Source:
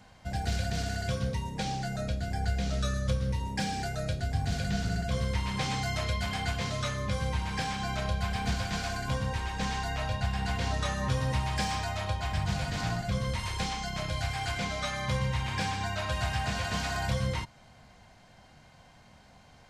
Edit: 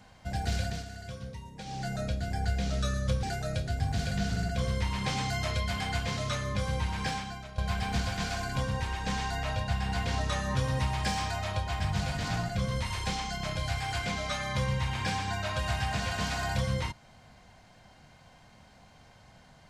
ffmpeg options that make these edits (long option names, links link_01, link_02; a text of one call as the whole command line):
ffmpeg -i in.wav -filter_complex "[0:a]asplit=5[link_01][link_02][link_03][link_04][link_05];[link_01]atrim=end=0.85,asetpts=PTS-STARTPTS,afade=type=out:start_time=0.63:duration=0.22:silence=0.316228[link_06];[link_02]atrim=start=0.85:end=1.65,asetpts=PTS-STARTPTS,volume=-10dB[link_07];[link_03]atrim=start=1.65:end=3.232,asetpts=PTS-STARTPTS,afade=type=in:duration=0.22:silence=0.316228[link_08];[link_04]atrim=start=3.758:end=8.11,asetpts=PTS-STARTPTS,afade=type=out:start_time=3.892:duration=0.46:curve=qua:silence=0.199526[link_09];[link_05]atrim=start=8.11,asetpts=PTS-STARTPTS,afade=type=in:duration=0.004:curve=hsin:silence=0.199526[link_10];[link_06][link_07][link_08]concat=n=3:v=0:a=1[link_11];[link_09][link_10]concat=n=2:v=0:a=1[link_12];[link_11][link_12]acrossfade=duration=0.004:curve1=hsin:curve2=hsin" out.wav